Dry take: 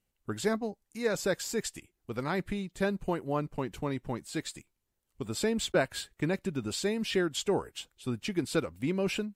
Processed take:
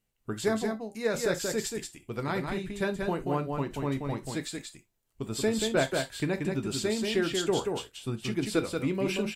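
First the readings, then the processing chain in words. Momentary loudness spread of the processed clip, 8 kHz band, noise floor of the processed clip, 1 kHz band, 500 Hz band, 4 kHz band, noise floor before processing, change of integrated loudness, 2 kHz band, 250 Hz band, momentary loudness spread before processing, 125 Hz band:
9 LU, +2.0 dB, −75 dBFS, +2.0 dB, +2.0 dB, +2.0 dB, −81 dBFS, +2.0 dB, +2.0 dB, +2.0 dB, 10 LU, +2.5 dB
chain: on a send: single-tap delay 182 ms −4.5 dB
on the sum: reverb whose tail is shaped and stops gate 90 ms falling, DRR 7.5 dB

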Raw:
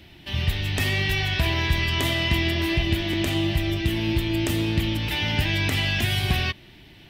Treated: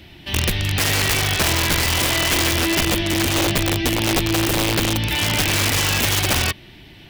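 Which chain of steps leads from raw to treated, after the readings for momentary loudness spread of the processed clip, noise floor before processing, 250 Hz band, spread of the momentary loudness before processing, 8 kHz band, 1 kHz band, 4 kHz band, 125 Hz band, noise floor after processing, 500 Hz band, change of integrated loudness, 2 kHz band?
3 LU, −49 dBFS, +3.0 dB, 3 LU, +17.5 dB, +8.5 dB, +6.0 dB, +1.5 dB, −44 dBFS, +6.0 dB, +5.5 dB, +5.0 dB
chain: wrap-around overflow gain 17.5 dB
level +5 dB

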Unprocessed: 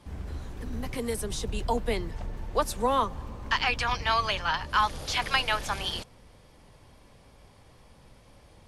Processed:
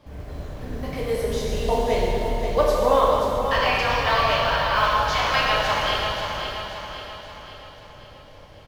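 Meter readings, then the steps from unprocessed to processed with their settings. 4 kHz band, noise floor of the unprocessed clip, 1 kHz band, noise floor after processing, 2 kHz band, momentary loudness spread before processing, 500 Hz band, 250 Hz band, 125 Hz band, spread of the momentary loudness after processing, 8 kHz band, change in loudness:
+5.5 dB, −56 dBFS, +7.0 dB, −45 dBFS, +6.0 dB, 13 LU, +11.5 dB, +5.0 dB, +6.0 dB, 17 LU, +0.5 dB, +7.0 dB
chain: parametric band 9,200 Hz −13 dB 0.56 octaves
repeating echo 532 ms, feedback 50%, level −7.5 dB
floating-point word with a short mantissa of 4 bits
parametric band 590 Hz +10 dB 0.36 octaves
dense smooth reverb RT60 2.6 s, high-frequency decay 0.95×, DRR −5 dB
level −1 dB

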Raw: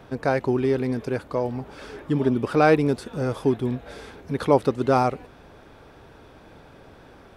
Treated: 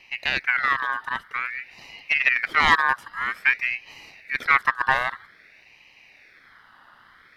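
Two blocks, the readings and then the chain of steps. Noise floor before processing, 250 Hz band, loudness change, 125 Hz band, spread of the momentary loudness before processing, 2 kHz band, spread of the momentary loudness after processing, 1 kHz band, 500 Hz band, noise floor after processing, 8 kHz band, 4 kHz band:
−49 dBFS, −20.5 dB, +1.0 dB, −19.0 dB, 16 LU, +13.5 dB, 12 LU, +2.5 dB, −19.0 dB, −54 dBFS, can't be measured, +10.5 dB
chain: phaser with its sweep stopped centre 2,400 Hz, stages 4
harmonic generator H 6 −27 dB, 7 −24 dB, 8 −30 dB, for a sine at −7.5 dBFS
ring modulator whose carrier an LFO sweeps 1,900 Hz, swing 30%, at 0.51 Hz
level +5.5 dB

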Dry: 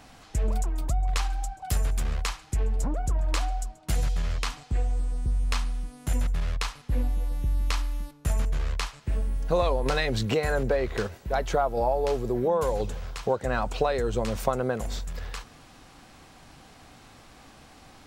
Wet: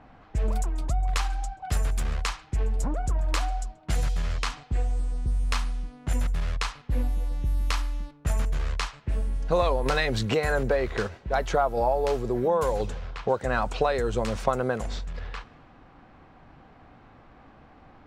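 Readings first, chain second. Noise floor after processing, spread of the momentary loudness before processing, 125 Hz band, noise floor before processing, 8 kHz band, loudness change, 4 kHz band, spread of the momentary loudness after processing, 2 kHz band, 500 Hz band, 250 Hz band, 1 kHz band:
−54 dBFS, 7 LU, 0.0 dB, −52 dBFS, −1.0 dB, +0.5 dB, +0.5 dB, 8 LU, +2.5 dB, +0.5 dB, 0.0 dB, +2.0 dB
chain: dynamic equaliser 1,400 Hz, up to +3 dB, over −42 dBFS, Q 0.82
low-pass that shuts in the quiet parts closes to 1,500 Hz, open at −21.5 dBFS

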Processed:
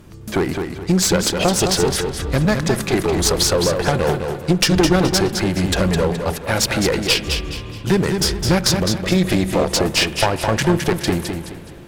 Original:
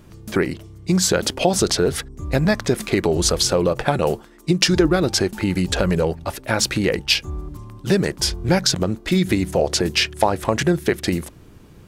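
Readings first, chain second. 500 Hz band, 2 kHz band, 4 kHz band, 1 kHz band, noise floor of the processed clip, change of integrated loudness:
+1.5 dB, +2.0 dB, +2.0 dB, +2.5 dB, −34 dBFS, +2.0 dB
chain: asymmetric clip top −20 dBFS
spring reverb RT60 3.7 s, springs 37/46 ms, chirp 70 ms, DRR 15 dB
feedback echo with a swinging delay time 211 ms, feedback 35%, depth 52 cents, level −6 dB
level +3 dB

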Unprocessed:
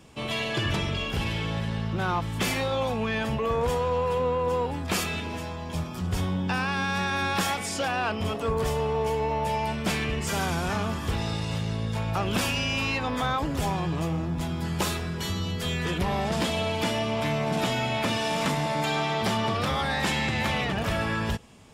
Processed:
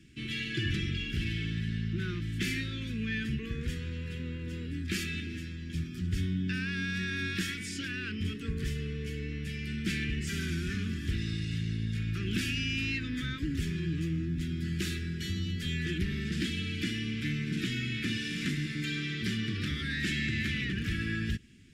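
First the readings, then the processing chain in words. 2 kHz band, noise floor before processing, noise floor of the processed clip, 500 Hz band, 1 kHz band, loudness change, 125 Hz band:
−5.0 dB, −34 dBFS, −39 dBFS, −17.0 dB, −26.5 dB, −6.0 dB, −3.0 dB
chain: Chebyshev band-stop filter 340–1,700 Hz, order 3
high-shelf EQ 6,500 Hz −11 dB
level −2.5 dB

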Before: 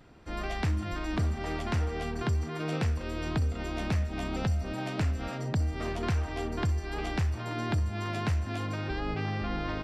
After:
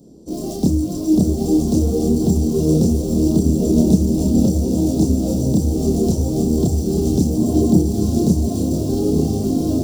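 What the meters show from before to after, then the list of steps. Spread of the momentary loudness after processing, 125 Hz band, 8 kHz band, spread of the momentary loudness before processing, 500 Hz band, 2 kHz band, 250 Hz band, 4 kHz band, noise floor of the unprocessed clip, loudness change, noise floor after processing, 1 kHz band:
4 LU, +11.0 dB, +19.5 dB, 3 LU, +16.0 dB, below −15 dB, +20.5 dB, +6.0 dB, −38 dBFS, +14.5 dB, −26 dBFS, +1.0 dB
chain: high-pass filter 60 Hz 12 dB per octave
parametric band 2,200 Hz −14 dB 0.85 octaves
mains-hum notches 50/100/150/200/250/300/350 Hz
feedback delay with all-pass diffusion 929 ms, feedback 51%, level −4.5 dB
in parallel at −11 dB: bit reduction 6 bits
on the sum: multi-voice chorus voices 6, 1.1 Hz, delay 29 ms, depth 3 ms
drawn EQ curve 110 Hz 0 dB, 180 Hz +12 dB, 310 Hz +11 dB, 500 Hz +7 dB, 1,600 Hz −27 dB, 6,100 Hz +10 dB
level +8.5 dB

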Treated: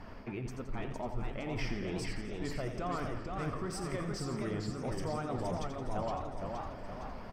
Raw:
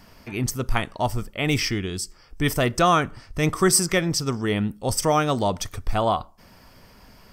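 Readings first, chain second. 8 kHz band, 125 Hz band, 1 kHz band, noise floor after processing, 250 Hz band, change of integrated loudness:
−24.0 dB, −12.0 dB, −15.0 dB, −45 dBFS, −12.5 dB, −15.0 dB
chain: spectral tilt −2.5 dB per octave
reversed playback
downward compressor 6 to 1, threshold −28 dBFS, peak gain reduction 23 dB
reversed playback
mid-hump overdrive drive 13 dB, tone 1,300 Hz, clips at −17 dBFS
brickwall limiter −28 dBFS, peak gain reduction 8.5 dB
on a send: repeating echo 85 ms, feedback 57%, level −9 dB
on the sum: flanger 1.3 Hz, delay 2.2 ms, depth 4.1 ms, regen −62%
feedback echo with a swinging delay time 465 ms, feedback 53%, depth 164 cents, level −4 dB
level +2 dB

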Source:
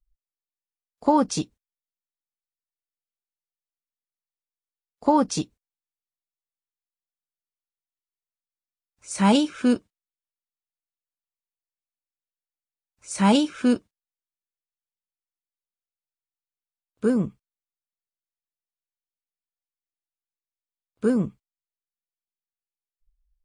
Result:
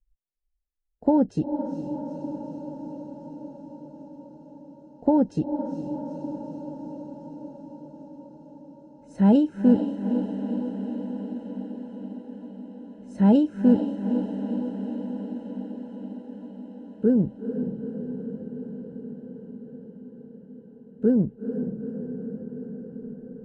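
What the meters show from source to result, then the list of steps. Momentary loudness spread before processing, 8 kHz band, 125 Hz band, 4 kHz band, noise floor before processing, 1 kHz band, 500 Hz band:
13 LU, below −25 dB, +3.5 dB, below −15 dB, below −85 dBFS, −7.5 dB, +1.0 dB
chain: moving average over 38 samples
feedback delay with all-pass diffusion 456 ms, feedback 75%, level −8 dB
level +2.5 dB

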